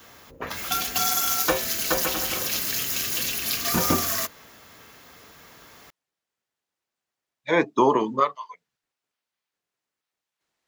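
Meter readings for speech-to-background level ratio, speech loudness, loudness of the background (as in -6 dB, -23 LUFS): 1.0 dB, -22.5 LUFS, -23.5 LUFS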